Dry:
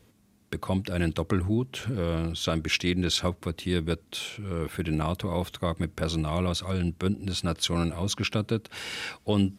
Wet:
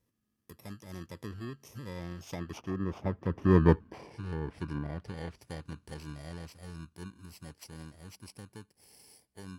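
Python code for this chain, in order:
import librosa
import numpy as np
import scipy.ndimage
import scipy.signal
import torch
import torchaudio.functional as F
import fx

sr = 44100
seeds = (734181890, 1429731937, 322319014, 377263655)

y = fx.bit_reversed(x, sr, seeds[0], block=32)
y = fx.doppler_pass(y, sr, speed_mps=20, closest_m=3.5, pass_at_s=3.66)
y = fx.env_lowpass_down(y, sr, base_hz=1300.0, full_db=-38.0)
y = y * librosa.db_to_amplitude(8.0)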